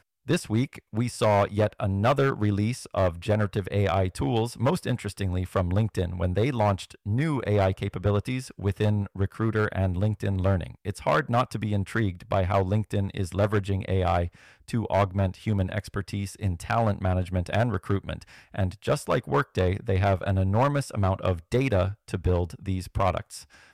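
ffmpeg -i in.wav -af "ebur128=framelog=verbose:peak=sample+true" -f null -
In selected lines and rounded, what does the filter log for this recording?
Integrated loudness:
  I:         -26.7 LUFS
  Threshold: -36.8 LUFS
Loudness range:
  LRA:         2.3 LU
  Threshold: -46.8 LUFS
  LRA low:   -27.9 LUFS
  LRA high:  -25.6 LUFS
Sample peak:
  Peak:      -14.8 dBFS
True peak:
  Peak:      -14.8 dBFS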